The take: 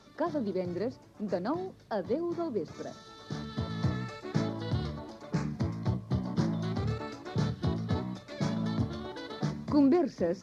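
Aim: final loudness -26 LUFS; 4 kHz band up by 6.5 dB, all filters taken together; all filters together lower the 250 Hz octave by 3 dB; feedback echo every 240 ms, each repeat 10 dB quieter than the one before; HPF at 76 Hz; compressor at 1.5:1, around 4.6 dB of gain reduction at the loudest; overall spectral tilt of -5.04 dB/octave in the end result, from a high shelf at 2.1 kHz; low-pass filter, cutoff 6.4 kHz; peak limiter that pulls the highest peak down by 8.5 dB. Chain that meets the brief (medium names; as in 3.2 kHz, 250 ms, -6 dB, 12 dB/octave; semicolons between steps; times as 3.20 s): high-pass 76 Hz; low-pass 6.4 kHz; peaking EQ 250 Hz -4 dB; treble shelf 2.1 kHz +3.5 dB; peaking EQ 4 kHz +5 dB; compression 1.5:1, threshold -36 dBFS; peak limiter -29.5 dBFS; feedback delay 240 ms, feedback 32%, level -10 dB; trim +13.5 dB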